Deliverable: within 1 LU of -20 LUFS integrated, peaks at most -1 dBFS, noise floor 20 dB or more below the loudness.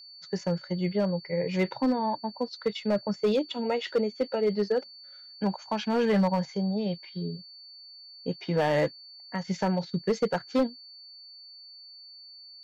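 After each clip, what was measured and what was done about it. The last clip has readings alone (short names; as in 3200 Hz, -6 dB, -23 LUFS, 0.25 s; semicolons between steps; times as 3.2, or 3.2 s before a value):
clipped 0.8%; flat tops at -18.5 dBFS; steady tone 4500 Hz; tone level -46 dBFS; loudness -29.0 LUFS; peak -18.5 dBFS; loudness target -20.0 LUFS
-> clip repair -18.5 dBFS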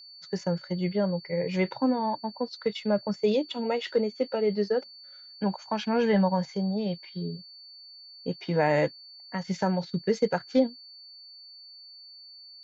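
clipped 0.0%; steady tone 4500 Hz; tone level -46 dBFS
-> notch 4500 Hz, Q 30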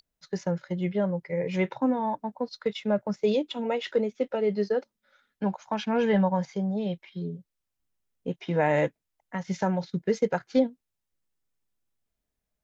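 steady tone none; loudness -28.5 LUFS; peak -11.5 dBFS; loudness target -20.0 LUFS
-> gain +8.5 dB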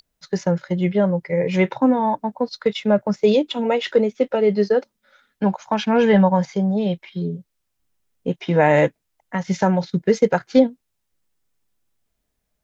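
loudness -20.0 LUFS; peak -3.0 dBFS; noise floor -76 dBFS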